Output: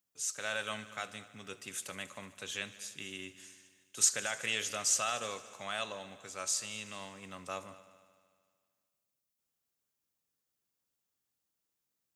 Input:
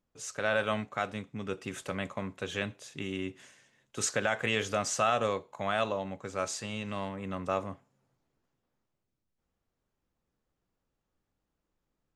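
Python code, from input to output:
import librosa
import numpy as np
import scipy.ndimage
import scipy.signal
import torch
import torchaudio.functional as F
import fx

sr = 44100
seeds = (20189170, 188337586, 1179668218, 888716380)

y = scipy.signal.sosfilt(scipy.signal.butter(2, 83.0, 'highpass', fs=sr, output='sos'), x)
y = librosa.effects.preemphasis(y, coef=0.9, zi=[0.0])
y = fx.echo_heads(y, sr, ms=75, heads='all three', feedback_pct=55, wet_db=-21.5)
y = y * 10.0 ** (6.5 / 20.0)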